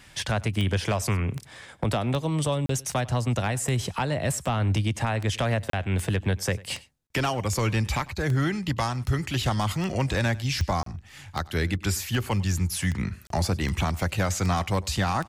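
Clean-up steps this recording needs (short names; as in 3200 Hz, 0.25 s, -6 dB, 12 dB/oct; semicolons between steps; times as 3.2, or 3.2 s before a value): de-click; interpolate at 2.66/5.7/7.07/10.83/13.27, 33 ms; inverse comb 99 ms -21.5 dB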